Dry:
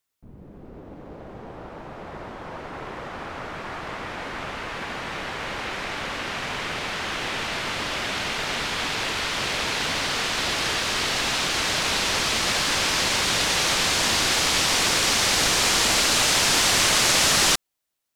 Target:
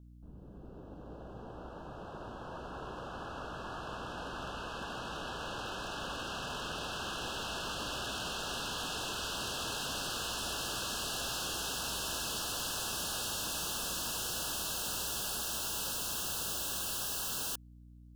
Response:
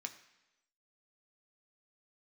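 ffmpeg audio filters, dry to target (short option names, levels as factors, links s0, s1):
-af "aeval=exprs='0.0631*(abs(mod(val(0)/0.0631+3,4)-2)-1)':c=same,aeval=exprs='val(0)+0.00562*(sin(2*PI*60*n/s)+sin(2*PI*2*60*n/s)/2+sin(2*PI*3*60*n/s)/3+sin(2*PI*4*60*n/s)/4+sin(2*PI*5*60*n/s)/5)':c=same,asuperstop=centerf=2100:order=20:qfactor=2.4,volume=0.398"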